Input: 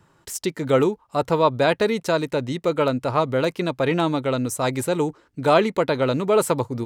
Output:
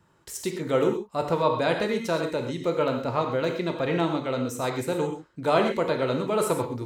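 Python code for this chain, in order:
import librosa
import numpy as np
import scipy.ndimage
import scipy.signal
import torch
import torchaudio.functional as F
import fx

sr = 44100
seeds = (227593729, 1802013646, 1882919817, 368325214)

y = fx.peak_eq(x, sr, hz=10000.0, db=-11.0, octaves=0.36, at=(2.7, 4.92))
y = fx.rev_gated(y, sr, seeds[0], gate_ms=150, shape='flat', drr_db=3.0)
y = y * 10.0 ** (-6.0 / 20.0)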